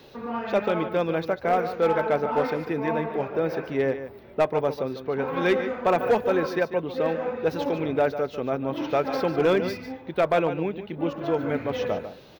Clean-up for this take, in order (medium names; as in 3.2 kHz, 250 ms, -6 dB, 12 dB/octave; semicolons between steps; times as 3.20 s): clip repair -14.5 dBFS; inverse comb 147 ms -11 dB